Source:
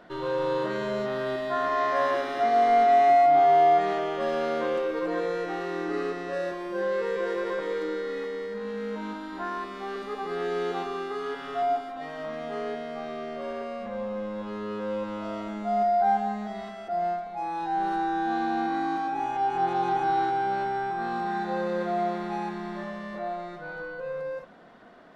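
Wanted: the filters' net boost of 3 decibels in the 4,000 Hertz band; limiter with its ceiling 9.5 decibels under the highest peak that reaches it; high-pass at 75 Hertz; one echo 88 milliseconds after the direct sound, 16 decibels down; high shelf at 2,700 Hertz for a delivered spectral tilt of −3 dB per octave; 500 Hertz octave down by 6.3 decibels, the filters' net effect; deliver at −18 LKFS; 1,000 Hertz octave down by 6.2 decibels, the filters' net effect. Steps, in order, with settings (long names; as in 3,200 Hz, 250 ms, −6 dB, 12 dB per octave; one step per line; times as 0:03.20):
high-pass filter 75 Hz
parametric band 500 Hz −6.5 dB
parametric band 1,000 Hz −5.5 dB
high-shelf EQ 2,700 Hz −5 dB
parametric band 4,000 Hz +8 dB
brickwall limiter −27 dBFS
single-tap delay 88 ms −16 dB
level +18 dB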